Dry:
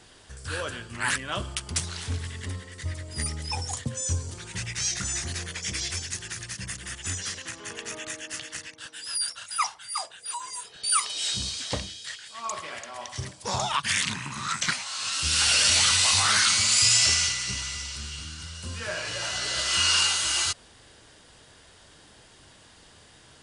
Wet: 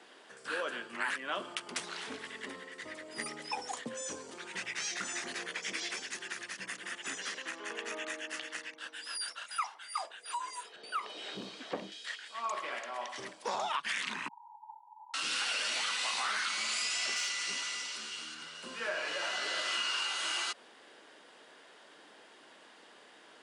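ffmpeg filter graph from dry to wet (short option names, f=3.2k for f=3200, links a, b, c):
-filter_complex "[0:a]asettb=1/sr,asplit=3[a][b][c];[a]atrim=end=10.764[d];[b]atrim=start=10.76:end=11.92,asetpts=PTS-STARTPTS,afade=t=in:d=0.004:c=qsin,afade=t=out:st=1.156:d=0.004:c=qsin,acrossover=split=3900[e][f];[f]acompressor=threshold=-39dB:ratio=4:attack=1:release=60[g];[e][g]amix=inputs=2:normalize=0,tiltshelf=f=870:g=8,volume=24.5dB,asoftclip=hard,volume=-24.5dB[h];[c]atrim=start=11.916[i];[d][h]acrossfade=d=0.004:c1=hsin:c2=qsin[j];[j][i]acrossfade=d=0.004:c1=qsin:c2=hsin,asettb=1/sr,asplit=3[k][l][m];[k]atrim=end=14.284[n];[l]atrim=start=14.28:end=15.14,asetpts=PTS-STARTPTS,afade=t=in:d=0.004:c=qsin,afade=t=out:st=0.856:d=0.004:c=qsin,aeval=exprs='abs(val(0))':c=same,asuperpass=centerf=900:order=12:qfactor=5.7[o];[m]atrim=start=15.136[p];[n][o]acrossfade=d=0.004:c1=hsin:c2=qsin[q];[q][p]acrossfade=d=0.004:c1=qsin:c2=hsin,asettb=1/sr,asplit=3[r][s][t];[r]atrim=end=17.164[u];[s]atrim=start=17.16:end=18.35,asetpts=PTS-STARTPTS,afade=t=in:d=0.004:c=qsin,afade=t=out:st=1.186:d=0.004:c=qsin,volume=17dB,asoftclip=hard,volume=-17dB,bass=f=250:g=-4,treble=f=4k:g=5[v];[t]atrim=start=18.346[w];[u][v]acrossfade=d=0.004:c1=hsin:c2=qsin[x];[x][w]acrossfade=d=0.004:c1=qsin:c2=hsin,highpass=f=190:w=0.5412,highpass=f=190:w=1.3066,acrossover=split=260 3300:gain=0.2 1 0.251[y][z][aa];[y][z][aa]amix=inputs=3:normalize=0,acompressor=threshold=-31dB:ratio=6"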